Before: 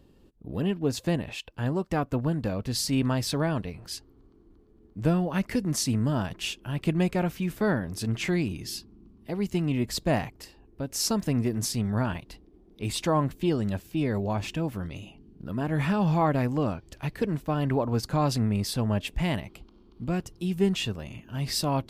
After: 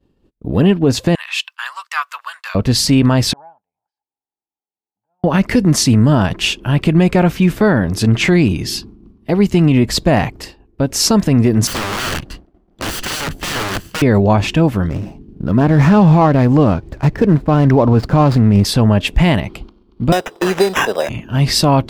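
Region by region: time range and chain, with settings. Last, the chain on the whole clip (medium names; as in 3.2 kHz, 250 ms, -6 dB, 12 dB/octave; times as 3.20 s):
1.15–2.55 s: elliptic high-pass 1.1 kHz, stop band 80 dB + treble shelf 3.6 kHz +5 dB
3.33–5.24 s: compression 16:1, threshold -36 dBFS + band-pass filter 840 Hz, Q 9.4 + comb 1.3 ms, depth 37%
11.67–14.02 s: comb filter that takes the minimum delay 0.66 ms + integer overflow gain 31.5 dB
14.88–18.65 s: median filter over 15 samples + bass shelf 460 Hz +2 dB
20.12–21.09 s: resonant high-pass 560 Hz, resonance Q 2.3 + sample-rate reducer 4.4 kHz + three bands compressed up and down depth 100%
whole clip: expander -45 dBFS; treble shelf 7 kHz -9.5 dB; loudness maximiser +18.5 dB; trim -1.5 dB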